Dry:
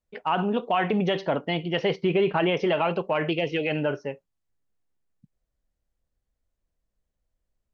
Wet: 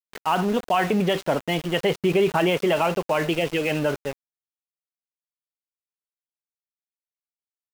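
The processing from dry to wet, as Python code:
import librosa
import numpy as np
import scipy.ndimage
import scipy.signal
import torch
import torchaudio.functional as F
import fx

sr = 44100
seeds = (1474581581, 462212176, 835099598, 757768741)

y = np.where(np.abs(x) >= 10.0 ** (-33.0 / 20.0), x, 0.0)
y = F.gain(torch.from_numpy(y), 2.5).numpy()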